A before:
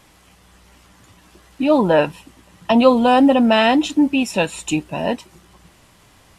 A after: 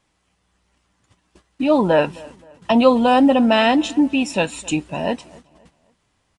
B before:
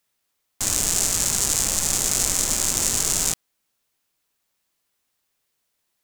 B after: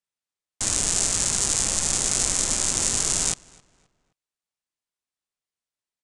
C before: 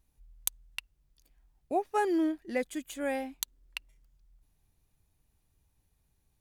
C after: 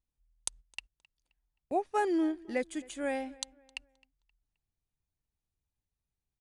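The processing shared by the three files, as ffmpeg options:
ffmpeg -i in.wav -filter_complex "[0:a]agate=range=-15dB:threshold=-46dB:ratio=16:detection=peak,asplit=2[link_01][link_02];[link_02]adelay=263,lowpass=frequency=3500:poles=1,volume=-23dB,asplit=2[link_03][link_04];[link_04]adelay=263,lowpass=frequency=3500:poles=1,volume=0.39,asplit=2[link_05][link_06];[link_06]adelay=263,lowpass=frequency=3500:poles=1,volume=0.39[link_07];[link_01][link_03][link_05][link_07]amix=inputs=4:normalize=0,aresample=22050,aresample=44100,volume=-1dB" out.wav

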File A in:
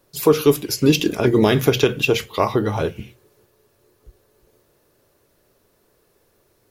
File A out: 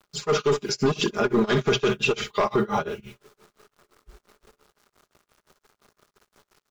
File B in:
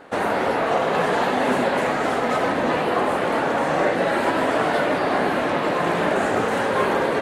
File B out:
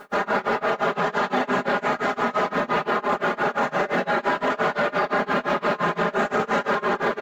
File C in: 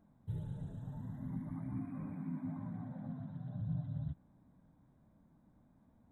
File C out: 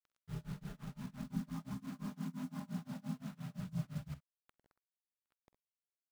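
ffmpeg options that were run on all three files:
ffmpeg -i in.wav -filter_complex "[0:a]aresample=16000,asoftclip=type=hard:threshold=-11.5dB,aresample=44100,aecho=1:1:4.9:0.88,acrusher=bits=8:mix=0:aa=0.000001,equalizer=frequency=1300:width=2.5:gain=6.5,asplit=2[link_01][link_02];[link_02]aecho=0:1:48|64:0.126|0.251[link_03];[link_01][link_03]amix=inputs=2:normalize=0,tremolo=f=5.8:d=0.97,alimiter=limit=-13dB:level=0:latency=1:release=15" out.wav

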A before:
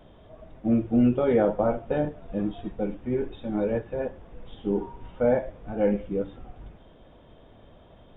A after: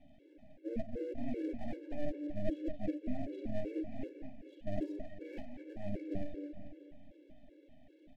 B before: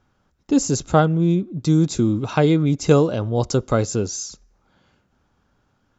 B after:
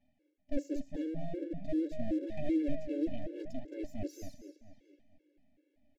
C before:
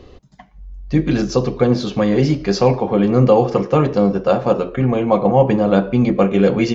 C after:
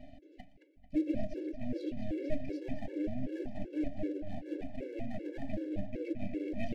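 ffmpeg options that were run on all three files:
ffmpeg -i in.wav -filter_complex "[0:a]areverse,acompressor=threshold=-28dB:ratio=12,areverse,asplit=3[link_01][link_02][link_03];[link_01]bandpass=frequency=300:width_type=q:width=8,volume=0dB[link_04];[link_02]bandpass=frequency=870:width_type=q:width=8,volume=-6dB[link_05];[link_03]bandpass=frequency=2240:width_type=q:width=8,volume=-9dB[link_06];[link_04][link_05][link_06]amix=inputs=3:normalize=0,aeval=exprs='max(val(0),0)':channel_layout=same,asuperstop=centerf=1100:order=8:qfactor=1.2,asplit=2[link_07][link_08];[link_08]adelay=221,lowpass=frequency=4400:poles=1,volume=-7.5dB,asplit=2[link_09][link_10];[link_10]adelay=221,lowpass=frequency=4400:poles=1,volume=0.5,asplit=2[link_11][link_12];[link_12]adelay=221,lowpass=frequency=4400:poles=1,volume=0.5,asplit=2[link_13][link_14];[link_14]adelay=221,lowpass=frequency=4400:poles=1,volume=0.5,asplit=2[link_15][link_16];[link_16]adelay=221,lowpass=frequency=4400:poles=1,volume=0.5,asplit=2[link_17][link_18];[link_18]adelay=221,lowpass=frequency=4400:poles=1,volume=0.5[link_19];[link_09][link_11][link_13][link_15][link_17][link_19]amix=inputs=6:normalize=0[link_20];[link_07][link_20]amix=inputs=2:normalize=0,afftfilt=real='re*gt(sin(2*PI*2.6*pts/sr)*(1-2*mod(floor(b*sr/1024/290),2)),0)':imag='im*gt(sin(2*PI*2.6*pts/sr)*(1-2*mod(floor(b*sr/1024/290),2)),0)':win_size=1024:overlap=0.75,volume=12dB" out.wav

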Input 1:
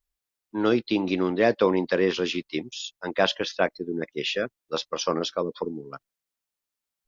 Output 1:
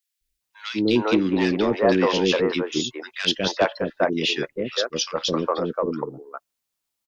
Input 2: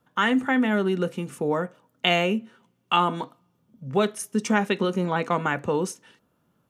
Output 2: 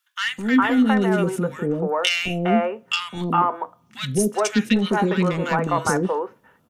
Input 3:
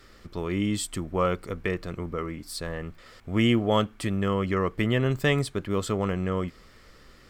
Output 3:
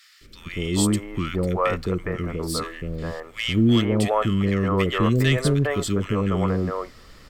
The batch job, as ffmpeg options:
ffmpeg -i in.wav -filter_complex "[0:a]aeval=exprs='0.596*sin(PI/2*2*val(0)/0.596)':channel_layout=same,acrossover=split=450|1700[link_01][link_02][link_03];[link_01]adelay=210[link_04];[link_02]adelay=410[link_05];[link_04][link_05][link_03]amix=inputs=3:normalize=0,volume=-3.5dB" out.wav

